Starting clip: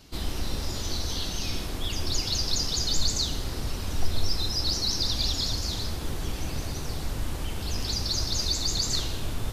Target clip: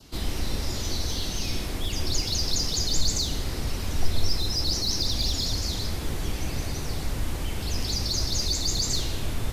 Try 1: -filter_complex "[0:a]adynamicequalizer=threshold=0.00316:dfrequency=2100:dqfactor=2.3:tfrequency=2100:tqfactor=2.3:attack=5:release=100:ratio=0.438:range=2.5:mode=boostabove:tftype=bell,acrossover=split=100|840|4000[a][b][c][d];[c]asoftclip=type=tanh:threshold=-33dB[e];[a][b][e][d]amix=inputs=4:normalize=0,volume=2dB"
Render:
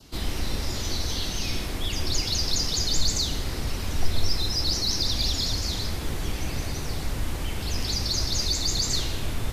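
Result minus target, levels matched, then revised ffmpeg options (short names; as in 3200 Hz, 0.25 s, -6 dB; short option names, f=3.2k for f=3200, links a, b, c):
soft clip: distortion -7 dB
-filter_complex "[0:a]adynamicequalizer=threshold=0.00316:dfrequency=2100:dqfactor=2.3:tfrequency=2100:tqfactor=2.3:attack=5:release=100:ratio=0.438:range=2.5:mode=boostabove:tftype=bell,acrossover=split=100|840|4000[a][b][c][d];[c]asoftclip=type=tanh:threshold=-41dB[e];[a][b][e][d]amix=inputs=4:normalize=0,volume=2dB"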